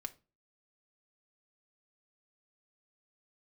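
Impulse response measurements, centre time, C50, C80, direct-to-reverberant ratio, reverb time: 3 ms, 19.0 dB, 26.0 dB, 5.0 dB, 0.35 s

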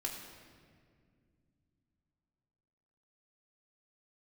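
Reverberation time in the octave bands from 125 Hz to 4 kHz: 4.0, 3.6, 2.4, 1.7, 1.7, 1.4 seconds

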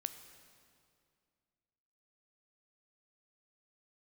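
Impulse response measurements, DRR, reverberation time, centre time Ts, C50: 9.5 dB, 2.3 s, 19 ms, 10.5 dB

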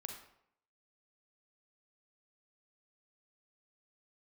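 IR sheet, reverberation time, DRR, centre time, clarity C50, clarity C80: 0.70 s, 3.0 dB, 29 ms, 5.0 dB, 8.0 dB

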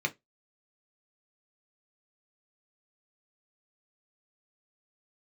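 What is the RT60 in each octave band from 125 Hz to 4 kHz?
0.20, 0.20, 0.20, 0.15, 0.15, 0.15 seconds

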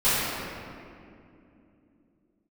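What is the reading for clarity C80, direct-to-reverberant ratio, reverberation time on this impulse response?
−2.0 dB, −16.5 dB, 2.6 s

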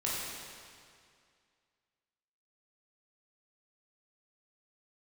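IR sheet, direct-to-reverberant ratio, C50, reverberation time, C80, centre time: −7.0 dB, −2.0 dB, 2.2 s, −0.5 dB, 136 ms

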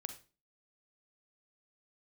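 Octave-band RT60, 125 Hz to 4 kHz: 0.40, 0.45, 0.35, 0.30, 0.30, 0.30 seconds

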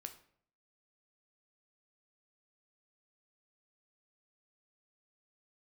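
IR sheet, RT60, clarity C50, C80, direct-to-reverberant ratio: 0.60 s, 12.0 dB, 16.0 dB, 6.5 dB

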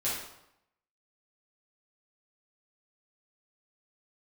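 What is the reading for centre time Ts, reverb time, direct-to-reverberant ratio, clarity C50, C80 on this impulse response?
57 ms, 0.80 s, −9.0 dB, 0.5 dB, 5.0 dB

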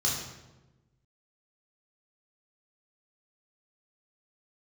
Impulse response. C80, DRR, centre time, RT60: 5.5 dB, −4.5 dB, 53 ms, 1.1 s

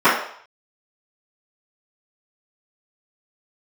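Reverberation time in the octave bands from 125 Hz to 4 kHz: 0.30, 0.40, 0.55, 0.65, 0.55, 0.60 seconds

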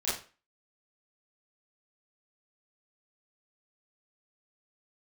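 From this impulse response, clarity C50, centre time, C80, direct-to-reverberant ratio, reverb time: 3.5 dB, 47 ms, 9.5 dB, −10.5 dB, 0.35 s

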